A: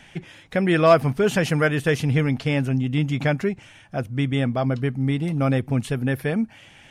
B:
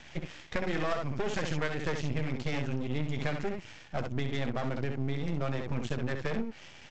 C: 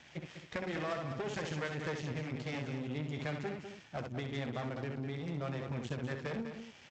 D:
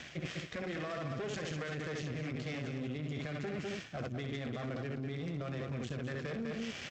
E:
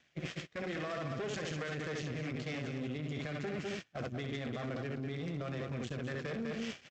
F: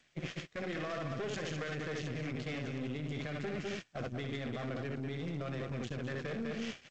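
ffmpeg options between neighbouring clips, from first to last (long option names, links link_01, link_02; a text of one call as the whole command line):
ffmpeg -i in.wav -af "aecho=1:1:13|65:0.355|0.562,aresample=16000,aeval=exprs='max(val(0),0)':channel_layout=same,aresample=44100,acompressor=threshold=-27dB:ratio=6" out.wav
ffmpeg -i in.wav -filter_complex "[0:a]highpass=78,asplit=2[link_01][link_02];[link_02]aecho=0:1:200:0.376[link_03];[link_01][link_03]amix=inputs=2:normalize=0,volume=-5.5dB" out.wav
ffmpeg -i in.wav -af "equalizer=frequency=890:width_type=o:width=0.23:gain=-12,alimiter=level_in=10dB:limit=-24dB:level=0:latency=1:release=27,volume=-10dB,areverse,acompressor=threshold=-50dB:ratio=6,areverse,volume=13.5dB" out.wav
ffmpeg -i in.wav -af "equalizer=frequency=61:width_type=o:width=2.9:gain=-2.5,agate=range=-23dB:threshold=-41dB:ratio=16:detection=peak,volume=1dB" out.wav
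ffmpeg -i in.wav -af "aeval=exprs='0.0473*(cos(1*acos(clip(val(0)/0.0473,-1,1)))-cos(1*PI/2))+0.00168*(cos(8*acos(clip(val(0)/0.0473,-1,1)))-cos(8*PI/2))':channel_layout=same" -ar 16000 -c:a g722 out.g722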